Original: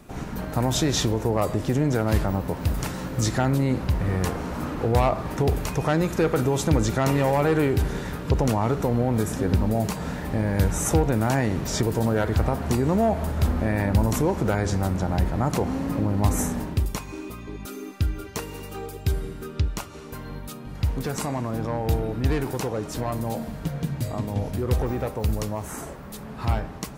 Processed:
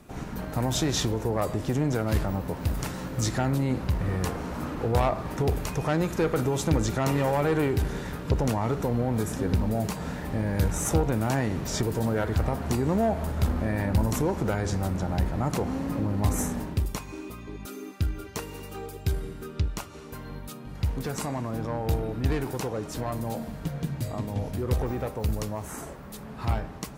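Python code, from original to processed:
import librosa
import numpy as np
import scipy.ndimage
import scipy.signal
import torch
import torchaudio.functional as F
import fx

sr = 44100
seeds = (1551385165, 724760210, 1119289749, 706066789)

y = fx.cheby_harmonics(x, sr, harmonics=(2,), levels_db=(-14,), full_scale_db=-8.5)
y = y * librosa.db_to_amplitude(-3.0)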